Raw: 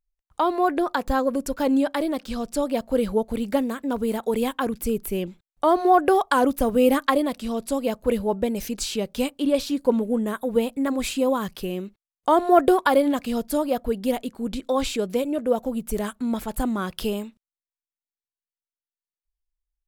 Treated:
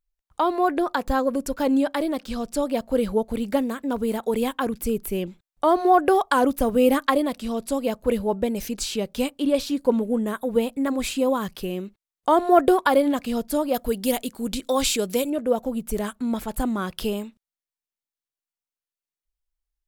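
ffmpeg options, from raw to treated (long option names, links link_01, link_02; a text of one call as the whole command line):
ffmpeg -i in.wav -filter_complex "[0:a]asettb=1/sr,asplit=3[link_01][link_02][link_03];[link_01]atrim=end=13.744[link_04];[link_02]atrim=start=13.74:end=15.3,asetpts=PTS-STARTPTS,afade=type=in:duration=0.004:curve=qsin,afade=type=out:start_time=1.556:duration=0.004:curve=qsin,highshelf=frequency=3500:gain=12[link_05];[link_03]atrim=start=15.296[link_06];[link_04][link_05]acrossfade=duration=0.004:curve1=hsin:curve2=qsin[link_07];[link_07][link_06]acrossfade=duration=0.004:curve1=qsin:curve2=hsin" out.wav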